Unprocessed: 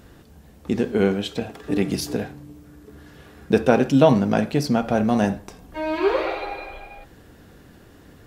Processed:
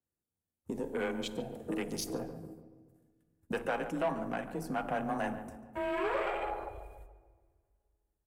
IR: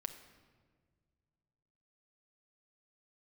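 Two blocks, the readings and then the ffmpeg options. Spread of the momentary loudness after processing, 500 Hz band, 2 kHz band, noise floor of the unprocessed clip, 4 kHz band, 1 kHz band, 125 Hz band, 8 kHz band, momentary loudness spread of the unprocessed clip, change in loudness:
15 LU, -14.0 dB, -9.0 dB, -49 dBFS, -12.5 dB, -9.5 dB, -19.5 dB, -9.0 dB, 18 LU, -14.5 dB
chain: -filter_complex "[0:a]aeval=exprs='if(lt(val(0),0),0.708*val(0),val(0))':c=same,agate=range=-25dB:threshold=-42dB:ratio=16:detection=peak,afwtdn=0.02,afreqshift=23,acrossover=split=690|3100[a][b][c];[a]acompressor=threshold=-32dB:ratio=6[d];[d][b][c]amix=inputs=3:normalize=0,alimiter=limit=-15.5dB:level=0:latency=1:release=382,highshelf=f=6.3k:t=q:w=1.5:g=13,asoftclip=type=tanh:threshold=-21dB,asplit=2[e][f];[f]adelay=143,lowpass=f=1.5k:p=1,volume=-10.5dB,asplit=2[g][h];[h]adelay=143,lowpass=f=1.5k:p=1,volume=0.52,asplit=2[i][j];[j]adelay=143,lowpass=f=1.5k:p=1,volume=0.52,asplit=2[k][l];[l]adelay=143,lowpass=f=1.5k:p=1,volume=0.52,asplit=2[m][n];[n]adelay=143,lowpass=f=1.5k:p=1,volume=0.52,asplit=2[o][p];[p]adelay=143,lowpass=f=1.5k:p=1,volume=0.52[q];[e][g][i][k][m][o][q]amix=inputs=7:normalize=0,asplit=2[r][s];[1:a]atrim=start_sample=2205[t];[s][t]afir=irnorm=-1:irlink=0,volume=1dB[u];[r][u]amix=inputs=2:normalize=0,adynamicequalizer=threshold=0.00447:dfrequency=4100:dqfactor=0.7:tfrequency=4100:tqfactor=0.7:attack=5:release=100:ratio=0.375:range=2:mode=cutabove:tftype=highshelf,volume=-8.5dB"

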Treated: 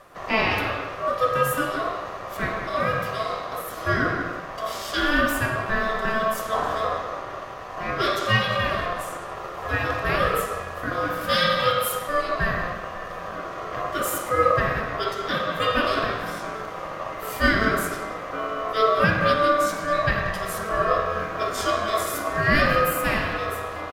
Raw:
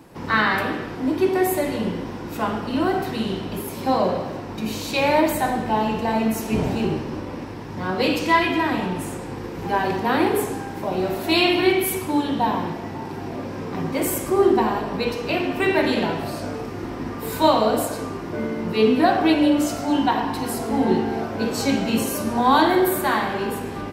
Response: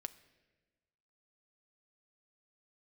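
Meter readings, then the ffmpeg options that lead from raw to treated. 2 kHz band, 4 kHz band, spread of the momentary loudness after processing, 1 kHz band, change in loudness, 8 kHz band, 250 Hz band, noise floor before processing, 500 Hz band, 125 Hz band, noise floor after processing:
+2.5 dB, -1.0 dB, 12 LU, -1.0 dB, -2.0 dB, -3.0 dB, -10.0 dB, -33 dBFS, -3.0 dB, -0.5 dB, -35 dBFS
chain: -filter_complex "[0:a]asplit=2[a][b];[b]adelay=180,highpass=300,lowpass=3.4k,asoftclip=type=hard:threshold=-12dB,volume=-9dB[c];[a][c]amix=inputs=2:normalize=0,aeval=exprs='val(0)*sin(2*PI*880*n/s)':c=same"

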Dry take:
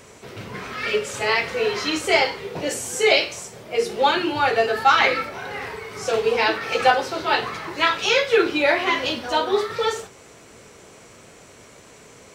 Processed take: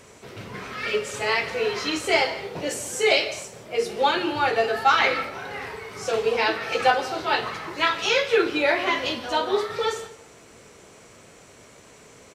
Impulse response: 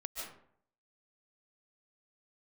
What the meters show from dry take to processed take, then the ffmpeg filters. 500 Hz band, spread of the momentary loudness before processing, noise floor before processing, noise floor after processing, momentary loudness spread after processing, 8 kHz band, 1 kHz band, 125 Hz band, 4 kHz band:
-2.5 dB, 13 LU, -47 dBFS, -50 dBFS, 13 LU, -2.5 dB, -2.5 dB, -2.5 dB, -2.5 dB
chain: -filter_complex "[0:a]asplit=2[a][b];[1:a]atrim=start_sample=2205,asetrate=43218,aresample=44100[c];[b][c]afir=irnorm=-1:irlink=0,volume=-11.5dB[d];[a][d]amix=inputs=2:normalize=0,aresample=32000,aresample=44100,volume=-4dB"

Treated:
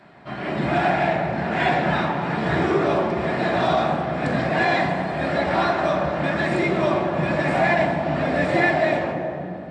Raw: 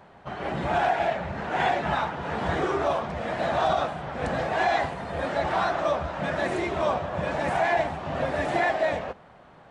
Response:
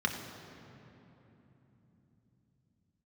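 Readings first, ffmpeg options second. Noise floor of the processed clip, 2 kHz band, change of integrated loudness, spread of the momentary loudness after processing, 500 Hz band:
-32 dBFS, +6.0 dB, +5.0 dB, 5 LU, +5.0 dB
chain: -filter_complex "[1:a]atrim=start_sample=2205,asetrate=61740,aresample=44100[a];[0:a][a]afir=irnorm=-1:irlink=0"

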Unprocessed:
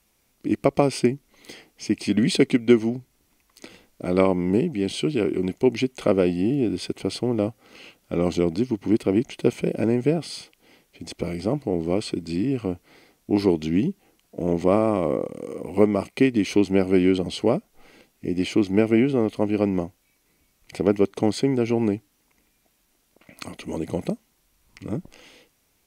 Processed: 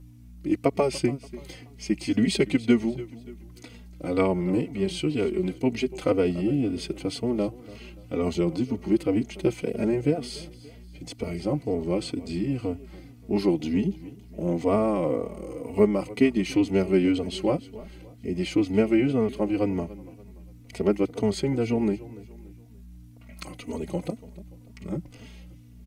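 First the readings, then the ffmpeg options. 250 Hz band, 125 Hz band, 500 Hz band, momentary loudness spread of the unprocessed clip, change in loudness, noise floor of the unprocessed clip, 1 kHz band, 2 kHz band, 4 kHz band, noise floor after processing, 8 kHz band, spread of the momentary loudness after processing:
-2.5 dB, -2.5 dB, -3.0 dB, 13 LU, -3.0 dB, -67 dBFS, -3.5 dB, -3.0 dB, -3.0 dB, -48 dBFS, -3.0 dB, 20 LU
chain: -filter_complex "[0:a]aeval=exprs='val(0)+0.00794*(sin(2*PI*60*n/s)+sin(2*PI*2*60*n/s)/2+sin(2*PI*3*60*n/s)/3+sin(2*PI*4*60*n/s)/4+sin(2*PI*5*60*n/s)/5)':c=same,aecho=1:1:289|578|867:0.119|0.0475|0.019,asplit=2[a][b];[b]adelay=3.4,afreqshift=-2[c];[a][c]amix=inputs=2:normalize=1"

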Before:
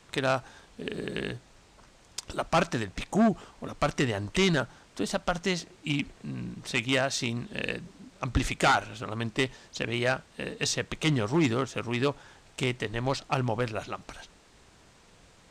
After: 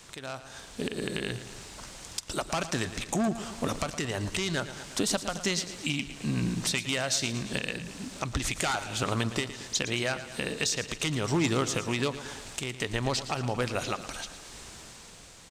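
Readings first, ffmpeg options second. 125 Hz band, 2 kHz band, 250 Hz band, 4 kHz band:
-1.5 dB, -1.5 dB, -2.0 dB, +1.5 dB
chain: -filter_complex "[0:a]highshelf=f=4k:g=11.5,acompressor=threshold=-32dB:ratio=6,alimiter=level_in=1dB:limit=-24dB:level=0:latency=1:release=445,volume=-1dB,dynaudnorm=f=150:g=11:m=6.5dB,asplit=2[a][b];[b]aecho=0:1:113|226|339|452|565|678:0.224|0.132|0.0779|0.046|0.0271|0.016[c];[a][c]amix=inputs=2:normalize=0,volume=2.5dB"

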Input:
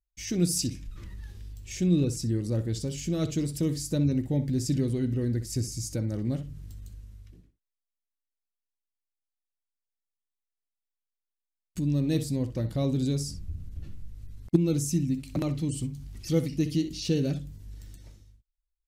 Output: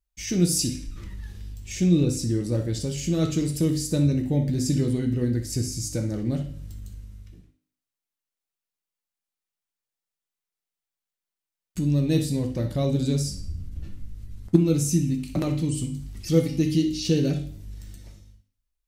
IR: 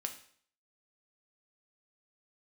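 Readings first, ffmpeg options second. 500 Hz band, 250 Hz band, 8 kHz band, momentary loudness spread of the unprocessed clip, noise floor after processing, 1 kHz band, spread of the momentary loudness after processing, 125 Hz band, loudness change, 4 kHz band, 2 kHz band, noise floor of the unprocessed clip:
+4.5 dB, +4.0 dB, +4.5 dB, 18 LU, under -85 dBFS, +4.5 dB, 18 LU, +4.0 dB, +4.0 dB, +4.5 dB, +4.5 dB, under -85 dBFS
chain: -filter_complex "[1:a]atrim=start_sample=2205[a];[0:a][a]afir=irnorm=-1:irlink=0,volume=5dB"

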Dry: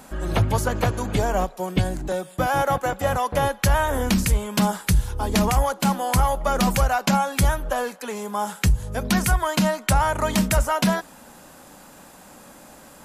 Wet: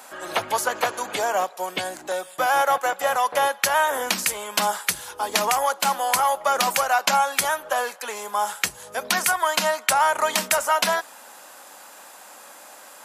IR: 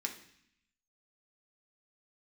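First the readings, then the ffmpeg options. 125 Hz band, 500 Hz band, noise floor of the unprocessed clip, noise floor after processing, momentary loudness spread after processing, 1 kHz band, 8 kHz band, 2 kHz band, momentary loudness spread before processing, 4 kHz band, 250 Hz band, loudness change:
under -20 dB, -0.5 dB, -47 dBFS, -45 dBFS, 9 LU, +3.0 dB, +4.0 dB, +4.0 dB, 5 LU, +4.0 dB, -15.0 dB, 0.0 dB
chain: -af "highpass=660,volume=4dB"

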